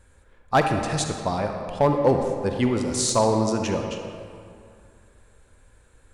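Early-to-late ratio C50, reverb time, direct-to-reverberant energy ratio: 4.5 dB, 2.5 s, 4.0 dB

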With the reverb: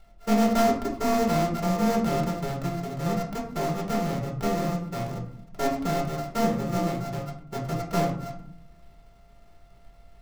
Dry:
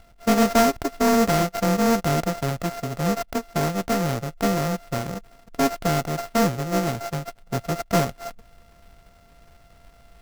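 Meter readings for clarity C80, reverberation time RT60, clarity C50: 11.0 dB, 0.65 s, 7.0 dB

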